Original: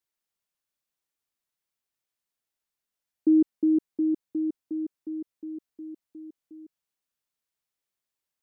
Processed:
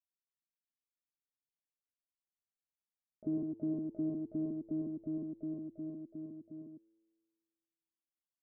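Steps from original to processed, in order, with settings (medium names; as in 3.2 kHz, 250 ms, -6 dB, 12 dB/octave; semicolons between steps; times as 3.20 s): sorted samples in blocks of 32 samples; compression 2.5:1, threshold -27 dBFS, peak gain reduction 7 dB; waveshaping leveller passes 3; harmony voices -12 st -15 dB, +5 st -18 dB, +12 st 0 dB; four-pole ladder low-pass 300 Hz, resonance 45%; feedback comb 110 Hz, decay 1.8 s, mix 70%; on a send: delay 107 ms -5 dB; on the sum: trim +6.5 dB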